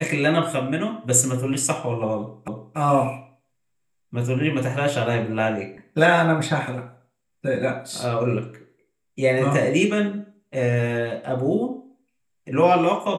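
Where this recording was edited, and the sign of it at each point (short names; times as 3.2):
2.48 repeat of the last 0.29 s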